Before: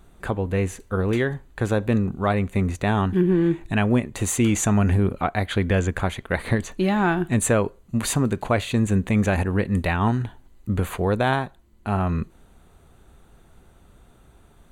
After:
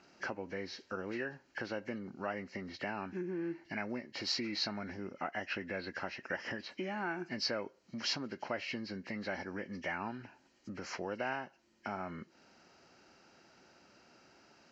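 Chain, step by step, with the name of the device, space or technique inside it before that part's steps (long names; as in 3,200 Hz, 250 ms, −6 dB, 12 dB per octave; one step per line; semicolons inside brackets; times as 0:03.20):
hearing aid with frequency lowering (hearing-aid frequency compression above 1,600 Hz 1.5 to 1; downward compressor 3 to 1, threshold −33 dBFS, peak gain reduction 14 dB; loudspeaker in its box 370–6,800 Hz, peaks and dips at 440 Hz −9 dB, 720 Hz −5 dB, 1,100 Hz −9 dB)
level +1 dB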